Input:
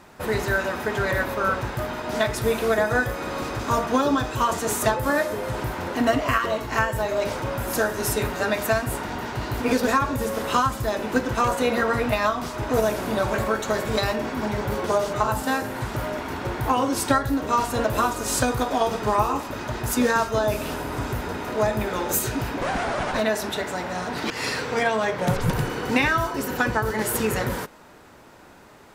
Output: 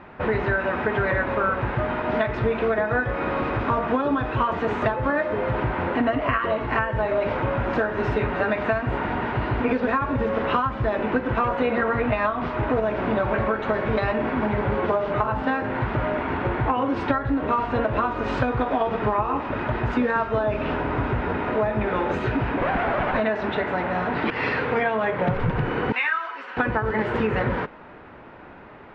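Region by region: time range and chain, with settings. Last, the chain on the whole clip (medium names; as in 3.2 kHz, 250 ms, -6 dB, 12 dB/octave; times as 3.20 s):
25.92–26.57 s: high-pass 1.2 kHz + three-phase chorus
whole clip: low-pass 2.7 kHz 24 dB/octave; compression, threshold -24 dBFS; trim +5 dB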